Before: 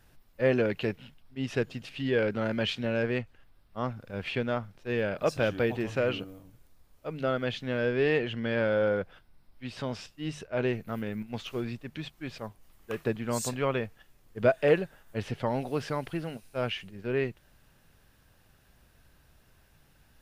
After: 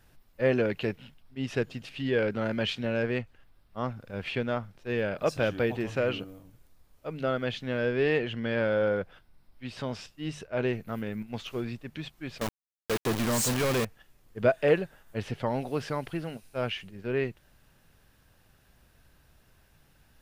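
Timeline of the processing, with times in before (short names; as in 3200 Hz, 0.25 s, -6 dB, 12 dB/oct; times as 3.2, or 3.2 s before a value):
12.41–13.85 companded quantiser 2-bit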